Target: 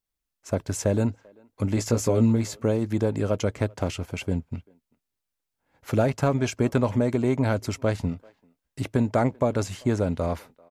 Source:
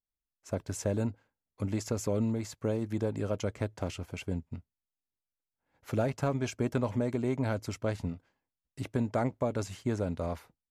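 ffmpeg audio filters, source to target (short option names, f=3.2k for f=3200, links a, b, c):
-filter_complex "[0:a]asettb=1/sr,asplit=3[a][b][c];[a]atrim=end=1.754[d];[b]atrim=start=1.75:end=2.62,asetpts=PTS-STARTPTS,afade=t=in:d=0.004:c=qsin,afade=t=out:st=0.866:d=0.004:c=qsin,asplit=2[e][f];[f]adelay=17,volume=-5dB[g];[e][g]amix=inputs=2:normalize=0,atrim=end_sample=38367[h];[c]atrim=start=2.616[i];[d][h]acrossfade=d=0.004:c1=hsin:c2=qsin[j];[j][i]acrossfade=d=0.004:c1=qsin:c2=hsin,asplit=2[k][l];[l]adelay=390,highpass=300,lowpass=3.4k,asoftclip=type=hard:threshold=-25dB,volume=-26dB[m];[k][m]amix=inputs=2:normalize=0,volume=7.5dB"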